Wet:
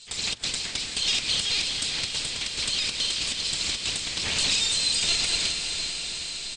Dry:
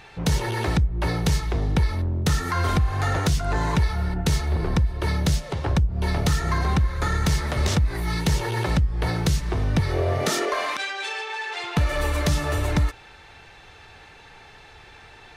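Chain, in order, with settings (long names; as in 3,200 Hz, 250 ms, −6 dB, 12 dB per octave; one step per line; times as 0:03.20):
lower of the sound and its delayed copy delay 0.6 ms
high-shelf EQ 2,400 Hz +12 dB
automatic gain control gain up to 7 dB
in parallel at −7 dB: hard clipping −16.5 dBFS, distortion −11 dB
on the sum: flat-topped band-pass 1,600 Hz, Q 0.69
double-tracking delay 25 ms −10 dB
single-tap delay 100 ms −22 dB
linear-prediction vocoder at 8 kHz pitch kept
feedback delay with all-pass diffusion 900 ms, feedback 70%, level −6 dB
wrong playback speed 33 rpm record played at 78 rpm
level −4.5 dB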